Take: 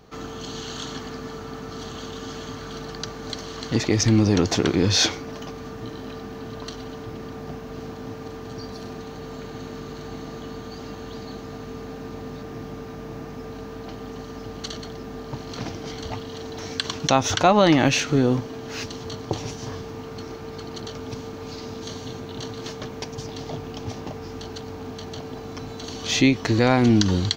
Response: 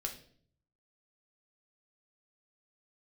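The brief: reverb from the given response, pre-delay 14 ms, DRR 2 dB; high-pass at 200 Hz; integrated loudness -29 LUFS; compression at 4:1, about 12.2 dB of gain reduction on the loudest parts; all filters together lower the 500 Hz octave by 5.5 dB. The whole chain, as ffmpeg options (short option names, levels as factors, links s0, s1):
-filter_complex "[0:a]highpass=200,equalizer=f=500:t=o:g=-7,acompressor=threshold=0.0316:ratio=4,asplit=2[s0][s1];[1:a]atrim=start_sample=2205,adelay=14[s2];[s1][s2]afir=irnorm=-1:irlink=0,volume=0.794[s3];[s0][s3]amix=inputs=2:normalize=0,volume=1.88"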